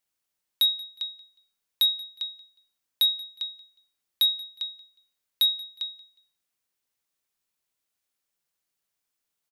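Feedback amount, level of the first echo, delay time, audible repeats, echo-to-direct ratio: 28%, -22.0 dB, 0.181 s, 2, -21.5 dB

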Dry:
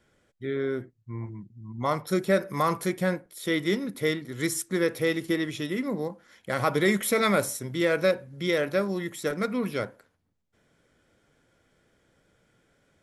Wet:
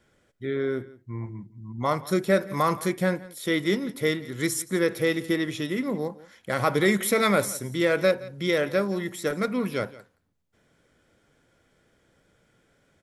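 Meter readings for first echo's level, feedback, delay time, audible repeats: -19.5 dB, no steady repeat, 0.171 s, 1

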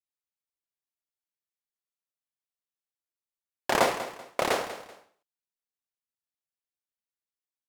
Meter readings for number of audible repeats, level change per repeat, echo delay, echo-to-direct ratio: 2, -10.5 dB, 0.192 s, -12.5 dB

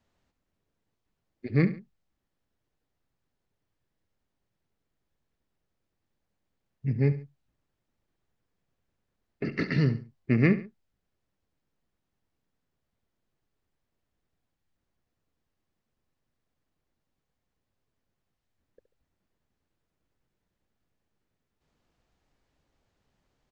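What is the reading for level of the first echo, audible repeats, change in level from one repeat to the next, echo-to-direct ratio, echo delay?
-14.0 dB, 2, -8.5 dB, -13.5 dB, 70 ms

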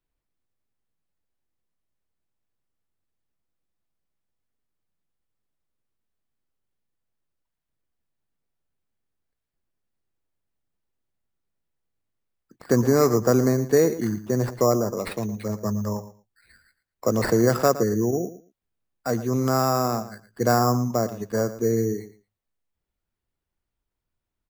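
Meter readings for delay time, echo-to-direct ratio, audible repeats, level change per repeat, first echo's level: 0.114 s, -14.5 dB, 2, -16.0 dB, -14.5 dB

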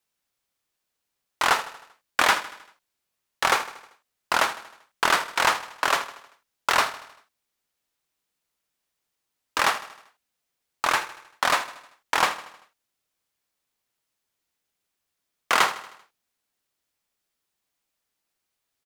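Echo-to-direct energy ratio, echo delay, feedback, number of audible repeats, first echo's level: -13.5 dB, 78 ms, 53%, 4, -15.0 dB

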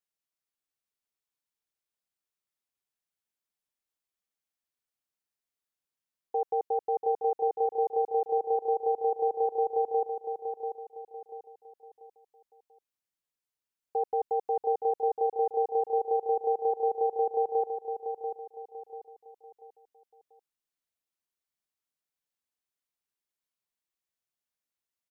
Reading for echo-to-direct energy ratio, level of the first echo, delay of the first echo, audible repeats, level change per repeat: -6.5 dB, -7.0 dB, 0.689 s, 4, -8.5 dB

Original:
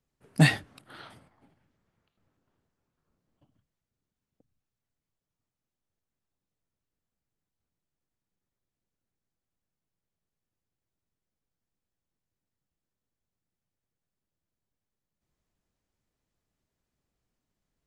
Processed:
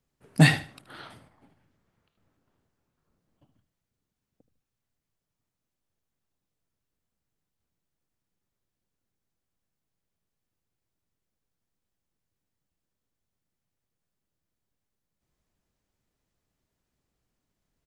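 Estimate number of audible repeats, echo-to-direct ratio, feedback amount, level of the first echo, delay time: 2, -14.0 dB, 25%, -14.5 dB, 76 ms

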